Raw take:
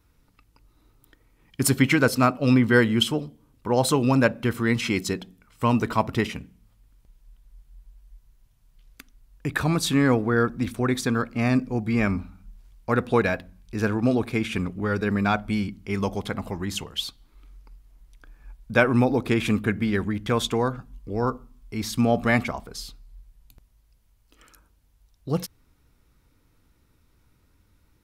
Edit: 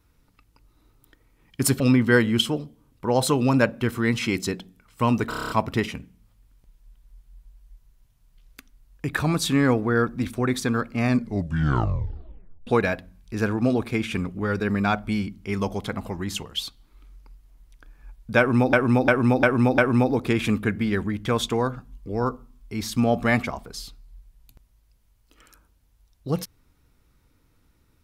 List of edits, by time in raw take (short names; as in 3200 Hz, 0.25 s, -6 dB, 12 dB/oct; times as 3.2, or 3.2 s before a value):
1.8–2.42 cut
5.91 stutter 0.03 s, 8 plays
11.51 tape stop 1.57 s
18.79–19.14 loop, 5 plays